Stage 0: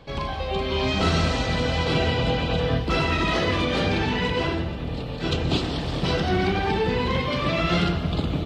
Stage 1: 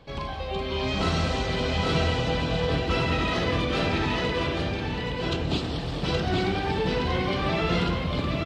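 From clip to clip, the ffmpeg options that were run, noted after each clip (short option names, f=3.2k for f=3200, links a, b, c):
-af "aecho=1:1:822:0.668,volume=-4dB"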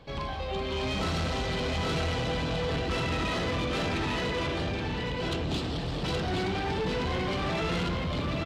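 -af "asoftclip=type=tanh:threshold=-25.5dB"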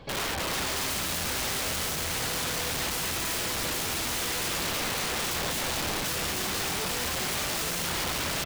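-af "aeval=exprs='(mod(33.5*val(0)+1,2)-1)/33.5':c=same,volume=4.5dB"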